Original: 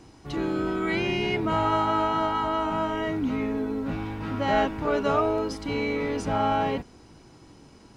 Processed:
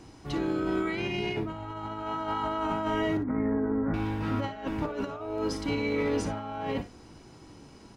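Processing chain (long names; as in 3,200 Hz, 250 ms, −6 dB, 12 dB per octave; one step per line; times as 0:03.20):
0:01.41–0:02.03: low-shelf EQ 130 Hz +8.5 dB
0:03.17–0:03.94: Butterworth low-pass 2,000 Hz 72 dB per octave
compressor whose output falls as the input rises −28 dBFS, ratio −0.5
on a send: ambience of single reflections 56 ms −12.5 dB, 66 ms −17.5 dB
on the sum: level −2.5 dB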